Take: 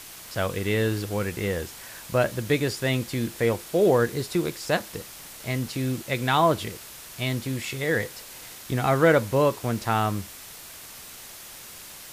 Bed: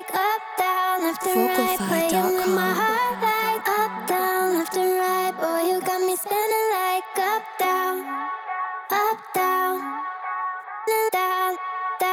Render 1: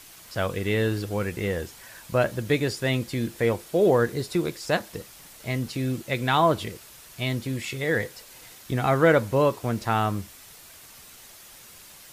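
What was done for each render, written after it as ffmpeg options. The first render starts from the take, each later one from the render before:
ffmpeg -i in.wav -af "afftdn=noise_reduction=6:noise_floor=-43" out.wav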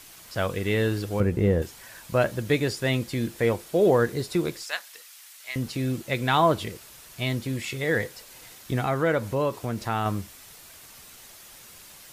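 ffmpeg -i in.wav -filter_complex "[0:a]asettb=1/sr,asplit=3[link_01][link_02][link_03];[link_01]atrim=end=1.204[link_04];[link_02]atrim=start=1.2:end=1.62,asetpts=PTS-STARTPTS,afade=type=in:duration=0.004:curve=qsin,afade=type=out:start_time=0.416:duration=0.004:curve=qsin,tiltshelf=frequency=920:gain=8.5[link_05];[link_03]atrim=start=1.616[link_06];[link_04][link_05]acrossfade=duration=0.004:curve1=hsin:curve2=qsin[link_07];[link_07][link_06]acrossfade=duration=0.004:curve1=qsin:curve2=hsin,asettb=1/sr,asplit=3[link_08][link_09][link_10];[link_08]atrim=end=4.634[link_11];[link_09]atrim=start=4.63:end=5.56,asetpts=PTS-STARTPTS,afade=type=in:duration=0.004:curve=qsin,afade=type=out:start_time=0.926:duration=0.004:curve=qsin,highpass=1500[link_12];[link_10]atrim=start=5.556[link_13];[link_11][link_12]acrossfade=duration=0.004:curve1=hsin:curve2=qsin[link_14];[link_14][link_13]acrossfade=duration=0.004:curve1=qsin:curve2=hsin,asettb=1/sr,asplit=3[link_15][link_16][link_17];[link_15]atrim=end=8.814[link_18];[link_16]atrim=start=8.81:end=10.06,asetpts=PTS-STARTPTS,afade=type=in:duration=0.004:curve=qsin,afade=type=out:start_time=1.246:duration=0.004:curve=qsin,acompressor=threshold=-28dB:ratio=1.5:attack=3.2:release=140:knee=1:detection=peak[link_19];[link_17]atrim=start=10.056[link_20];[link_18][link_19]acrossfade=duration=0.004:curve1=hsin:curve2=qsin[link_21];[link_21][link_20]acrossfade=duration=0.004:curve1=qsin:curve2=hsin" out.wav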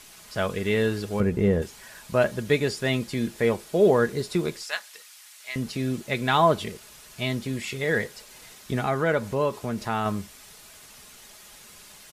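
ffmpeg -i in.wav -af "lowpass=12000,aecho=1:1:4.8:0.35" out.wav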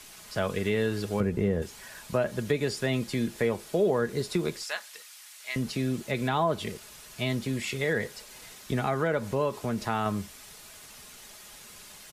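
ffmpeg -i in.wav -filter_complex "[0:a]acrossover=split=150|910[link_01][link_02][link_03];[link_03]alimiter=limit=-21dB:level=0:latency=1:release=74[link_04];[link_01][link_02][link_04]amix=inputs=3:normalize=0,acompressor=threshold=-24dB:ratio=2.5" out.wav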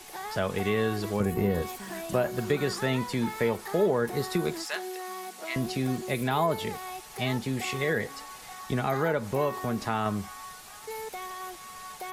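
ffmpeg -i in.wav -i bed.wav -filter_complex "[1:a]volume=-16.5dB[link_01];[0:a][link_01]amix=inputs=2:normalize=0" out.wav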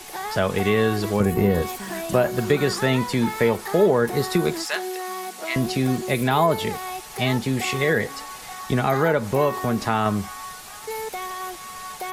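ffmpeg -i in.wav -af "volume=7dB" out.wav

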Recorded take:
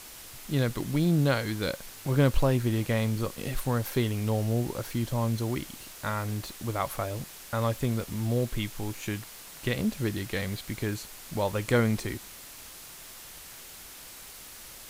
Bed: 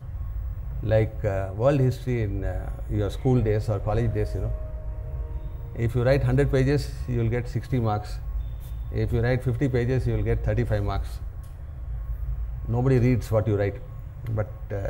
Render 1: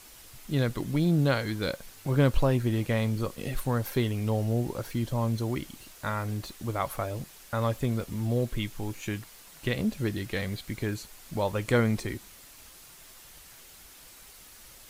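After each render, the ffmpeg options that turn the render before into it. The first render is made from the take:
ffmpeg -i in.wav -af "afftdn=noise_reduction=6:noise_floor=-46" out.wav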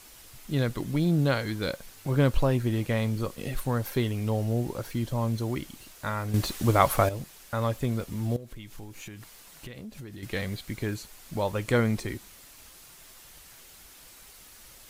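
ffmpeg -i in.wav -filter_complex "[0:a]asettb=1/sr,asplit=3[link_01][link_02][link_03];[link_01]atrim=end=8.364[link_04];[link_02]atrim=start=8.36:end=10.23,asetpts=PTS-STARTPTS,afade=type=in:duration=0.004:curve=qsin,afade=type=out:start_time=1.866:duration=0.004:curve=qsin,acompressor=threshold=-38dB:ratio=8:attack=3.2:release=140:knee=1:detection=peak[link_05];[link_03]atrim=start=10.226[link_06];[link_04][link_05]acrossfade=duration=0.004:curve1=hsin:curve2=qsin[link_07];[link_07][link_06]acrossfade=duration=0.004:curve1=qsin:curve2=hsin,asplit=3[link_08][link_09][link_10];[link_08]atrim=end=6.342[link_11];[link_09]atrim=start=6.338:end=7.092,asetpts=PTS-STARTPTS,volume=9.5dB[link_12];[link_10]atrim=start=7.088[link_13];[link_11][link_12]acrossfade=duration=0.004:curve1=hsin:curve2=hsin[link_14];[link_14][link_13]acrossfade=duration=0.004:curve1=hsin:curve2=hsin" out.wav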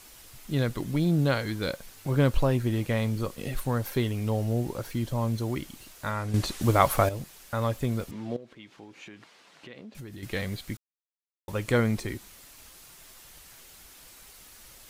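ffmpeg -i in.wav -filter_complex "[0:a]asettb=1/sr,asplit=3[link_01][link_02][link_03];[link_01]atrim=end=6.114[link_04];[link_02]atrim=start=6.11:end=6.61,asetpts=PTS-STARTPTS,afade=type=in:duration=0.004:curve=qsin,afade=type=out:start_time=0.496:duration=0.004:curve=qsin,lowpass=11000[link_05];[link_03]atrim=start=6.606[link_06];[link_04][link_05]acrossfade=duration=0.004:curve1=hsin:curve2=qsin[link_07];[link_07][link_06]acrossfade=duration=0.004:curve1=qsin:curve2=hsin,asettb=1/sr,asplit=3[link_08][link_09][link_10];[link_08]atrim=end=8.114[link_11];[link_09]atrim=start=8.11:end=9.95,asetpts=PTS-STARTPTS,afade=type=in:duration=0.004:curve=qsin,afade=type=out:start_time=1.836:duration=0.004:curve=qsin,highpass=230,lowpass=3900[link_12];[link_10]atrim=start=9.946[link_13];[link_11][link_12]acrossfade=duration=0.004:curve1=hsin:curve2=qsin[link_14];[link_14][link_13]acrossfade=duration=0.004:curve1=qsin:curve2=hsin,asplit=3[link_15][link_16][link_17];[link_15]atrim=end=10.77,asetpts=PTS-STARTPTS,afade=type=out:start_time=10.766:duration=0.004:curve=hsin[link_18];[link_16]atrim=start=10.77:end=11.48,asetpts=PTS-STARTPTS,volume=0[link_19];[link_17]atrim=start=11.48,asetpts=PTS-STARTPTS,afade=type=in:duration=0.004:curve=hsin[link_20];[link_18][link_19][link_20]concat=n=3:v=0:a=1" out.wav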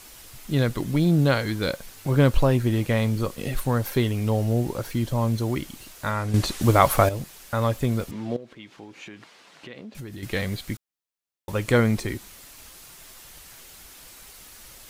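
ffmpeg -i in.wav -af "volume=4.5dB,alimiter=limit=-3dB:level=0:latency=1" out.wav

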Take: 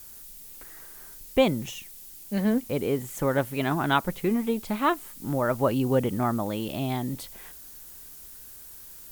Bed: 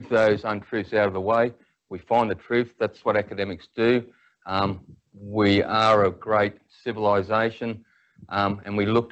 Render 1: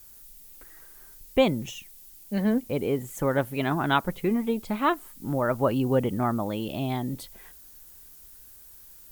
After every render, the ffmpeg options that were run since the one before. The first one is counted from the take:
ffmpeg -i in.wav -af "afftdn=noise_reduction=6:noise_floor=-46" out.wav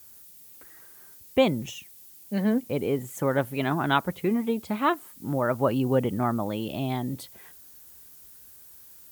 ffmpeg -i in.wav -af "highpass=frequency=66:width=0.5412,highpass=frequency=66:width=1.3066" out.wav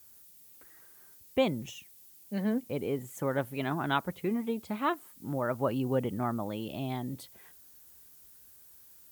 ffmpeg -i in.wav -af "volume=-6dB" out.wav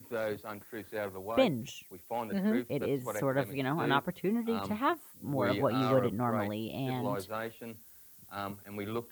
ffmpeg -i in.wav -i bed.wav -filter_complex "[1:a]volume=-15.5dB[link_01];[0:a][link_01]amix=inputs=2:normalize=0" out.wav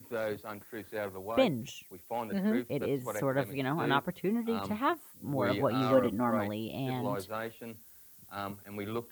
ffmpeg -i in.wav -filter_complex "[0:a]asettb=1/sr,asplit=3[link_01][link_02][link_03];[link_01]atrim=end=5.924[link_04];[link_02]atrim=start=5.92:end=6.39,asetpts=PTS-STARTPTS,afade=type=in:duration=0.004:curve=qsin,afade=type=out:start_time=0.466:duration=0.004:curve=qsin,aecho=1:1:3.5:0.65,atrim=end_sample=20727[link_05];[link_03]atrim=start=6.386[link_06];[link_04][link_05]acrossfade=duration=0.004:curve1=hsin:curve2=qsin[link_07];[link_07][link_06]acrossfade=duration=0.004:curve1=qsin:curve2=hsin" out.wav

